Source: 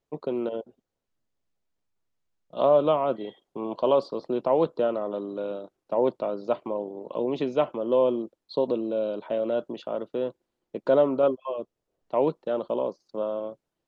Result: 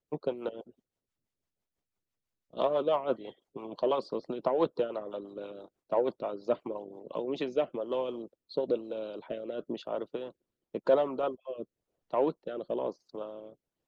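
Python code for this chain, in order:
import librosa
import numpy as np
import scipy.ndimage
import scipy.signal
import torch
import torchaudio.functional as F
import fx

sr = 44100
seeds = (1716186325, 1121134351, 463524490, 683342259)

p1 = fx.rotary_switch(x, sr, hz=6.0, then_hz=1.0, switch_at_s=6.85)
p2 = fx.hpss(p1, sr, part='harmonic', gain_db=-13)
p3 = 10.0 ** (-25.5 / 20.0) * np.tanh(p2 / 10.0 ** (-25.5 / 20.0))
p4 = p2 + F.gain(torch.from_numpy(p3), -10.0).numpy()
p5 = fx.band_squash(p4, sr, depth_pct=40, at=(2.66, 3.21))
y = F.gain(torch.from_numpy(p5), -1.0).numpy()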